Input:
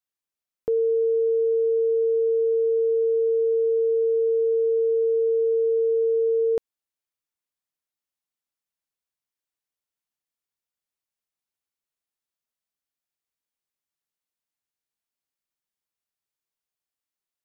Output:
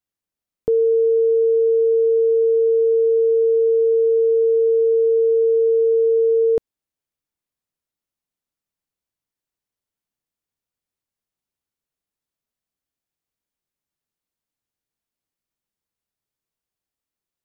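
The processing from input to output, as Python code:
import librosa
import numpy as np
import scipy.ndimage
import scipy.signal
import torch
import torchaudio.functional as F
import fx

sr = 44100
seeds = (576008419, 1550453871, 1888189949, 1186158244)

y = fx.low_shelf(x, sr, hz=490.0, db=10.0)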